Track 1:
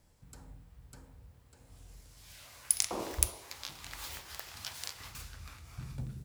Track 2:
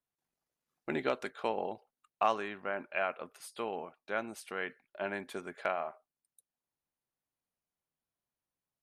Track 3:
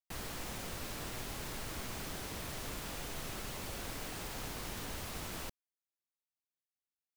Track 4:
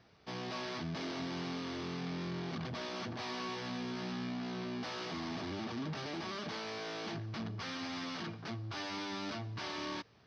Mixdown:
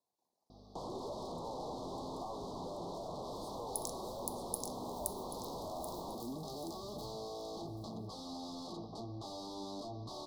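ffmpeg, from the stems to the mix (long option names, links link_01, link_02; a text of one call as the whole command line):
ffmpeg -i stem1.wav -i stem2.wav -i stem3.wav -i stem4.wav -filter_complex "[0:a]crystalizer=i=1:c=0,adelay=1050,volume=-13.5dB,asplit=2[link_01][link_02];[link_02]volume=-5dB[link_03];[1:a]volume=-13dB,asplit=2[link_04][link_05];[2:a]lowpass=2400,adelay=650,volume=-4dB[link_06];[3:a]bandreject=frequency=950:width=5.9,aeval=exprs='val(0)+0.00251*(sin(2*PI*50*n/s)+sin(2*PI*2*50*n/s)/2+sin(2*PI*3*50*n/s)/3+sin(2*PI*4*50*n/s)/4+sin(2*PI*5*50*n/s)/5)':channel_layout=same,adelay=500,volume=-13.5dB[link_07];[link_05]apad=whole_len=321545[link_08];[link_01][link_08]sidechaincompress=threshold=-48dB:ratio=8:attack=16:release=857[link_09];[link_04][link_06][link_07]amix=inputs=3:normalize=0,asplit=2[link_10][link_11];[link_11]highpass=frequency=720:poles=1,volume=32dB,asoftclip=type=tanh:threshold=-26.5dB[link_12];[link_10][link_12]amix=inputs=2:normalize=0,lowpass=frequency=1900:poles=1,volume=-6dB,acompressor=threshold=-39dB:ratio=6,volume=0dB[link_13];[link_03]aecho=0:1:783|1566|2349|3132:1|0.25|0.0625|0.0156[link_14];[link_09][link_13][link_14]amix=inputs=3:normalize=0,asuperstop=centerf=2000:order=12:qfactor=0.74,bandreject=frequency=75.31:width_type=h:width=4,bandreject=frequency=150.62:width_type=h:width=4,bandreject=frequency=225.93:width_type=h:width=4,bandreject=frequency=301.24:width_type=h:width=4,bandreject=frequency=376.55:width_type=h:width=4,bandreject=frequency=451.86:width_type=h:width=4,bandreject=frequency=527.17:width_type=h:width=4,bandreject=frequency=602.48:width_type=h:width=4,bandreject=frequency=677.79:width_type=h:width=4,bandreject=frequency=753.1:width_type=h:width=4,bandreject=frequency=828.41:width_type=h:width=4,bandreject=frequency=903.72:width_type=h:width=4,bandreject=frequency=979.03:width_type=h:width=4,bandreject=frequency=1054.34:width_type=h:width=4,bandreject=frequency=1129.65:width_type=h:width=4,bandreject=frequency=1204.96:width_type=h:width=4,bandreject=frequency=1280.27:width_type=h:width=4,bandreject=frequency=1355.58:width_type=h:width=4,bandreject=frequency=1430.89:width_type=h:width=4,bandreject=frequency=1506.2:width_type=h:width=4,bandreject=frequency=1581.51:width_type=h:width=4,bandreject=frequency=1656.82:width_type=h:width=4,bandreject=frequency=1732.13:width_type=h:width=4,bandreject=frequency=1807.44:width_type=h:width=4,bandreject=frequency=1882.75:width_type=h:width=4,bandreject=frequency=1958.06:width_type=h:width=4,bandreject=frequency=2033.37:width_type=h:width=4,bandreject=frequency=2108.68:width_type=h:width=4,bandreject=frequency=2183.99:width_type=h:width=4,bandreject=frequency=2259.3:width_type=h:width=4" out.wav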